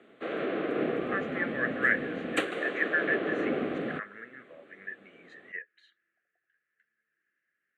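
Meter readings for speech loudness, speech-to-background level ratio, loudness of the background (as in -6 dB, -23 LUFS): -33.0 LUFS, -0.5 dB, -32.5 LUFS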